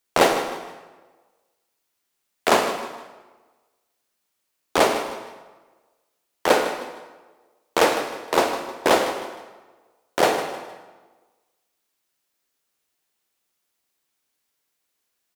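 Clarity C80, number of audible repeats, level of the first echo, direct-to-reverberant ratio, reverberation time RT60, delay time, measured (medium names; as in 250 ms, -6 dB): 7.5 dB, 3, -12.5 dB, 5.5 dB, 1.3 s, 155 ms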